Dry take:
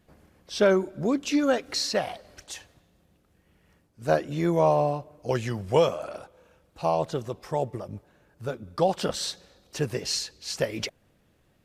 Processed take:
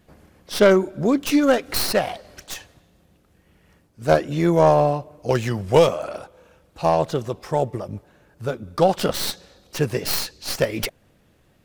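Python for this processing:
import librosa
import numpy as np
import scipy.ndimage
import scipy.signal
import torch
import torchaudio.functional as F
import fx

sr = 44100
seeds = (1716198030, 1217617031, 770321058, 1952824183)

y = fx.tracing_dist(x, sr, depth_ms=0.15)
y = F.gain(torch.from_numpy(y), 6.0).numpy()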